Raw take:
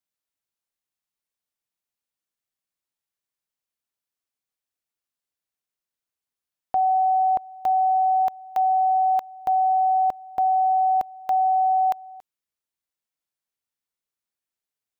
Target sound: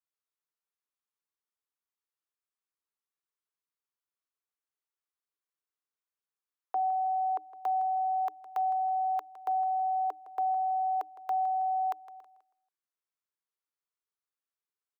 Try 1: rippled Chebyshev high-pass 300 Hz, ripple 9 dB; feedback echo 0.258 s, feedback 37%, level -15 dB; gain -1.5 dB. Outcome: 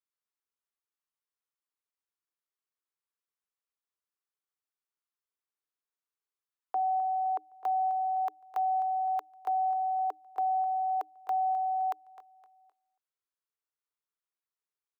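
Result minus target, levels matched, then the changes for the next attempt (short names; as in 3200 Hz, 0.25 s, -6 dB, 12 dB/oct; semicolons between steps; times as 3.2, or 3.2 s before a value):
echo 97 ms late
change: feedback echo 0.161 s, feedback 37%, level -15 dB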